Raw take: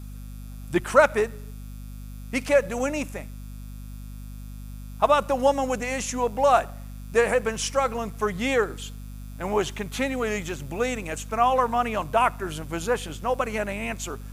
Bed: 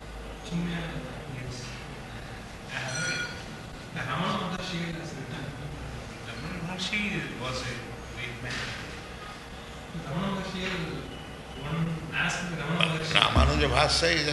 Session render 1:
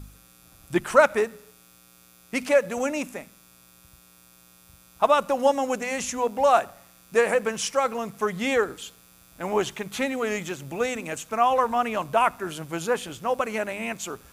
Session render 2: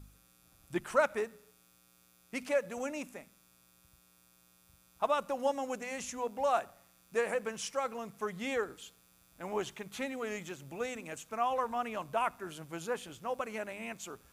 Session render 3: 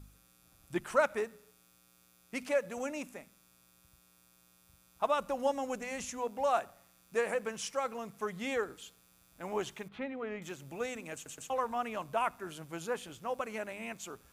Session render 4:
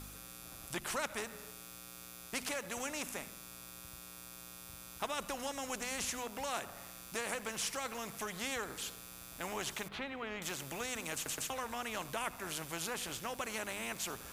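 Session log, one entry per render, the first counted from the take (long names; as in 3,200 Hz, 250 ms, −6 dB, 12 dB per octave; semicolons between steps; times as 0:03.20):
hum removal 50 Hz, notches 5
level −11 dB
0:05.20–0:06.05: low-shelf EQ 83 Hz +12 dB; 0:09.88–0:10.42: high-frequency loss of the air 400 metres; 0:11.14: stutter in place 0.12 s, 3 plays
downward compressor 1.5 to 1, threshold −41 dBFS, peak gain reduction 7 dB; every bin compressed towards the loudest bin 2 to 1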